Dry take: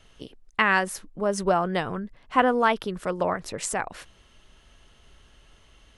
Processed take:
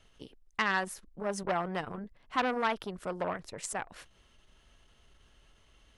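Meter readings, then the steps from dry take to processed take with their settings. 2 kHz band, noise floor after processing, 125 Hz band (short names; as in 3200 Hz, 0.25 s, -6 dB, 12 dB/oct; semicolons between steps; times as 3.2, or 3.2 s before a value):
-8.0 dB, -64 dBFS, -8.5 dB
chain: core saturation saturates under 2000 Hz; gain -6.5 dB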